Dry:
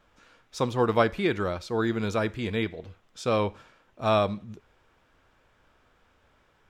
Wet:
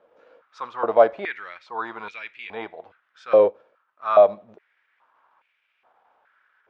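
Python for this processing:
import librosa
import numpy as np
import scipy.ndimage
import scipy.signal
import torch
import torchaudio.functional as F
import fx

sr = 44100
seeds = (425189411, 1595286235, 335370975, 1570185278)

y = fx.law_mismatch(x, sr, coded='A', at=(3.44, 4.16))
y = fx.tilt_eq(y, sr, slope=-4.0)
y = fx.transient(y, sr, attack_db=-6, sustain_db=-2)
y = scipy.signal.sosfilt(scipy.signal.butter(2, 4700.0, 'lowpass', fs=sr, output='sos'), y)
y = fx.filter_held_highpass(y, sr, hz=2.4, low_hz=510.0, high_hz=2400.0)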